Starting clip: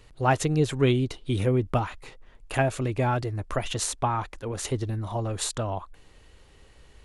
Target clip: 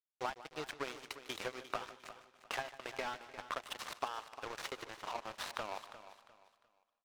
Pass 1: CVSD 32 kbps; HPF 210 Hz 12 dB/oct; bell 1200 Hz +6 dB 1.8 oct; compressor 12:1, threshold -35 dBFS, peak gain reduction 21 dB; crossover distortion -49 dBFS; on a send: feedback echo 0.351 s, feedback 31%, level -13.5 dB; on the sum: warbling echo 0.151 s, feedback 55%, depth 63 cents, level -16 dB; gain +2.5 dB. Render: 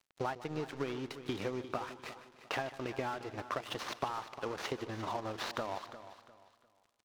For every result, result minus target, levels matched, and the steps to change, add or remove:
250 Hz band +8.0 dB; crossover distortion: distortion -9 dB
change: HPF 640 Hz 12 dB/oct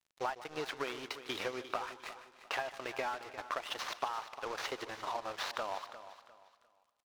crossover distortion: distortion -8 dB
change: crossover distortion -40 dBFS

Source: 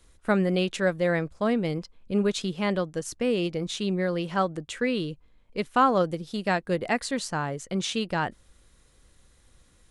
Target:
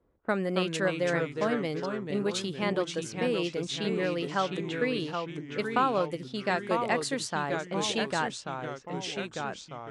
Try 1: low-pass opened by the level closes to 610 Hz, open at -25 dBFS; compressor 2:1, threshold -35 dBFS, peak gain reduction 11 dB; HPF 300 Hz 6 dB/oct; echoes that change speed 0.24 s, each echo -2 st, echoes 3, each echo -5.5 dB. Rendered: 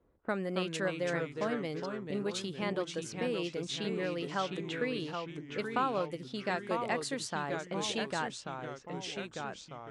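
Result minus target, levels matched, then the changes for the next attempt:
compressor: peak gain reduction +5.5 dB
change: compressor 2:1, threshold -24 dBFS, peak gain reduction 5.5 dB

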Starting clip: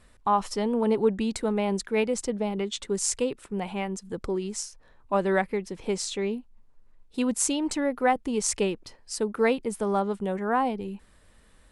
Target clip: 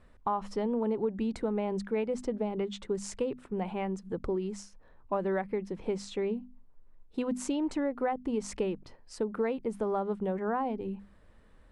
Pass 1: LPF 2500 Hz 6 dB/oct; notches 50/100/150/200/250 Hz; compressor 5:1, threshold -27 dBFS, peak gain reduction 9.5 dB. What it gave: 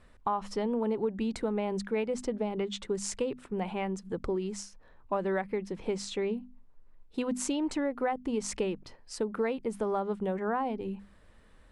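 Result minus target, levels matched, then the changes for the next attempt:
2000 Hz band +2.5 dB
change: LPF 1200 Hz 6 dB/oct

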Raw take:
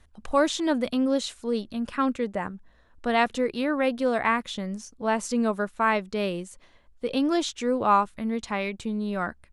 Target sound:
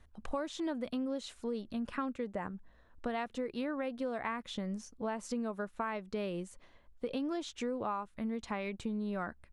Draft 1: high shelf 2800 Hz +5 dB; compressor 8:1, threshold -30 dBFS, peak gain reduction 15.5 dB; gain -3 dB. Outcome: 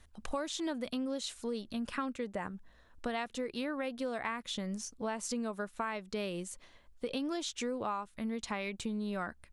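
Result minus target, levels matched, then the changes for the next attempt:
4000 Hz band +5.5 dB
change: high shelf 2800 Hz -6.5 dB

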